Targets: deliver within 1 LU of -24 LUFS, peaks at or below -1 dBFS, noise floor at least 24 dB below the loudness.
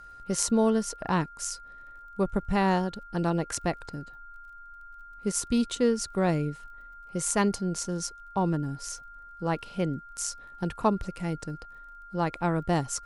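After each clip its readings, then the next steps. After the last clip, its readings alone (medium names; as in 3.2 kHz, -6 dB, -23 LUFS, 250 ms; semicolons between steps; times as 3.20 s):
tick rate 29 per s; steady tone 1.4 kHz; tone level -45 dBFS; loudness -29.0 LUFS; peak level -8.0 dBFS; loudness target -24.0 LUFS
-> de-click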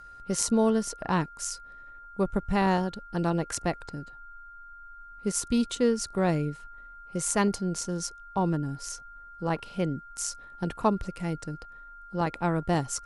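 tick rate 0.077 per s; steady tone 1.4 kHz; tone level -45 dBFS
-> band-stop 1.4 kHz, Q 30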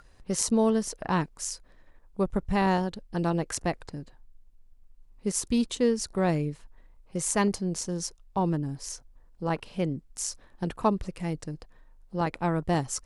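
steady tone not found; loudness -29.5 LUFS; peak level -8.0 dBFS; loudness target -24.0 LUFS
-> trim +5.5 dB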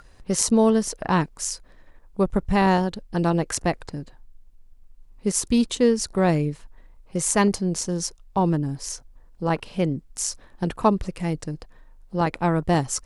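loudness -24.0 LUFS; peak level -2.5 dBFS; noise floor -52 dBFS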